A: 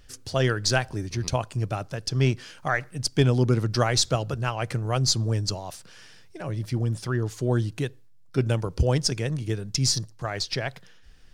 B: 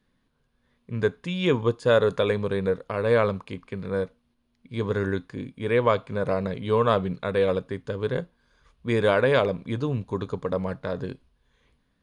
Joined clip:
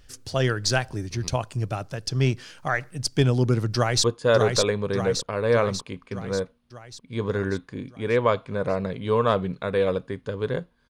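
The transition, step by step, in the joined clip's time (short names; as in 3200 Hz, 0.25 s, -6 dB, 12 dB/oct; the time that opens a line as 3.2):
A
3.75–4.04 echo throw 0.59 s, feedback 60%, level -3 dB
4.04 switch to B from 1.65 s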